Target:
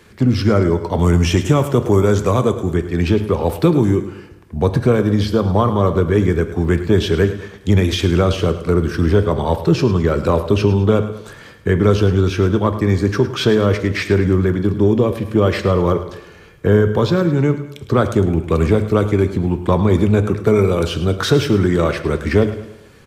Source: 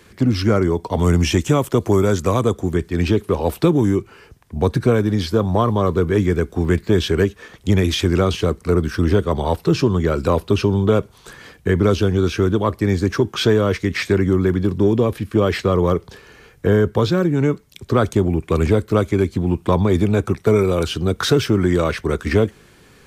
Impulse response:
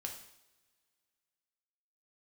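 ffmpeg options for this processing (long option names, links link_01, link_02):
-filter_complex "[0:a]aecho=1:1:106|212|318|424:0.211|0.0909|0.0391|0.0168,asplit=2[link_01][link_02];[1:a]atrim=start_sample=2205,highshelf=frequency=5700:gain=-11.5[link_03];[link_02][link_03]afir=irnorm=-1:irlink=0,volume=0dB[link_04];[link_01][link_04]amix=inputs=2:normalize=0,volume=-3dB"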